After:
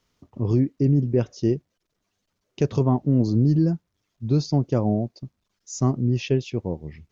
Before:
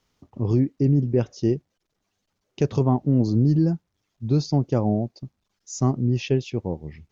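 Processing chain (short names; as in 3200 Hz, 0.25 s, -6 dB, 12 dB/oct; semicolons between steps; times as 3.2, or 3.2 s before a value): notch 810 Hz, Q 12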